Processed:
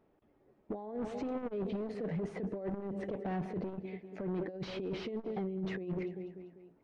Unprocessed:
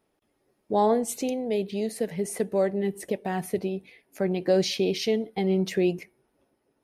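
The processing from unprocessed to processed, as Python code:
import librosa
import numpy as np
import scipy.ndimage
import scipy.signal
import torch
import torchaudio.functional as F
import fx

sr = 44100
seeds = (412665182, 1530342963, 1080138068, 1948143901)

y = fx.echo_feedback(x, sr, ms=196, feedback_pct=50, wet_db=-20)
y = fx.over_compress(y, sr, threshold_db=-29.0, ratio=-0.5)
y = np.clip(10.0 ** (31.0 / 20.0) * y, -1.0, 1.0) / 10.0 ** (31.0 / 20.0)
y = fx.spacing_loss(y, sr, db_at_10k=43)
y = fx.transformer_sat(y, sr, knee_hz=110.0)
y = y * librosa.db_to_amplitude(1.0)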